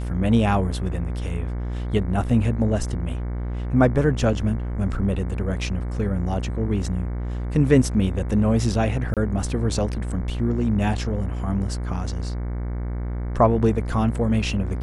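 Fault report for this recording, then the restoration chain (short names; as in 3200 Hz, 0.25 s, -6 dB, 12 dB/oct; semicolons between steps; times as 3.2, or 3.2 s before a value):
buzz 60 Hz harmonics 38 -27 dBFS
9.14–9.17 gap 27 ms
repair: de-hum 60 Hz, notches 38; interpolate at 9.14, 27 ms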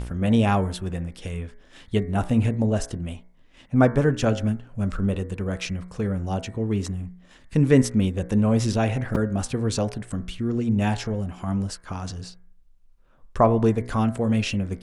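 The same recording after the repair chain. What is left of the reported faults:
none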